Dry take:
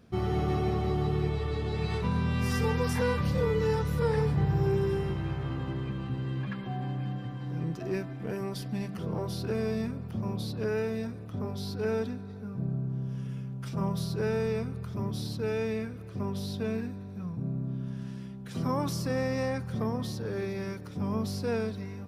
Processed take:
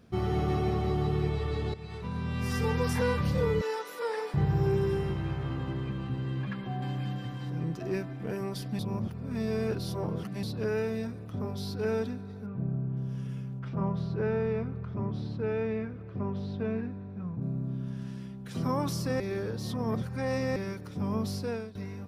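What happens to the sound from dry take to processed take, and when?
1.74–2.81 s: fade in, from -14.5 dB
3.61–4.34 s: Bessel high-pass 530 Hz, order 8
6.82–7.50 s: treble shelf 2.5 kHz +9.5 dB
8.79–10.43 s: reverse
12.46–12.97 s: low-pass 3.2 kHz 24 dB/octave
13.59–17.42 s: low-pass 2.2 kHz
19.20–20.56 s: reverse
21.35–21.75 s: fade out, to -16 dB

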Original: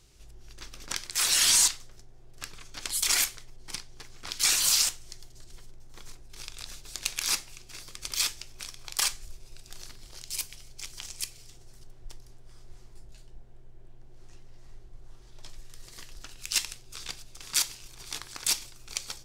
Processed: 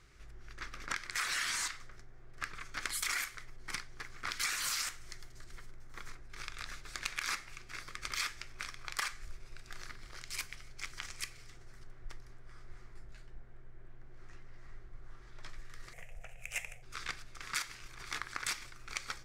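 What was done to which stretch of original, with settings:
2.55–6.09 s: treble shelf 8.7 kHz +7.5 dB
15.93–16.83 s: FFT filter 180 Hz 0 dB, 290 Hz -28 dB, 490 Hz +4 dB, 720 Hz +8 dB, 1.1 kHz -17 dB, 1.6 kHz -13 dB, 2.5 kHz +1 dB, 4.3 kHz -26 dB, 6.8 kHz -5 dB, 13 kHz -2 dB
whole clip: low-pass 3.6 kHz 6 dB/octave; high-order bell 1.6 kHz +10.5 dB 1.2 oct; compression 10:1, threshold -30 dBFS; trim -2 dB

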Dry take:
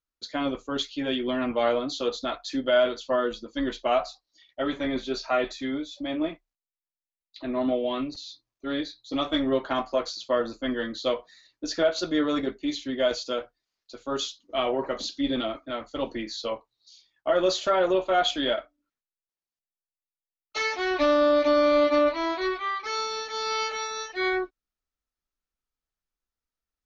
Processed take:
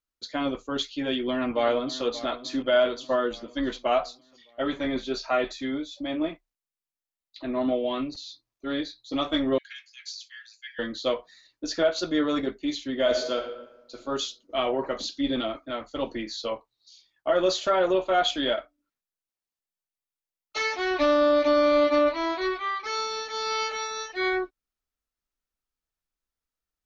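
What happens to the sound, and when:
0.97–2.04 s: echo throw 580 ms, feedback 55%, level -15 dB
9.58–10.79 s: rippled Chebyshev high-pass 1.6 kHz, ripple 6 dB
12.91–13.97 s: reverb throw, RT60 1 s, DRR 5 dB

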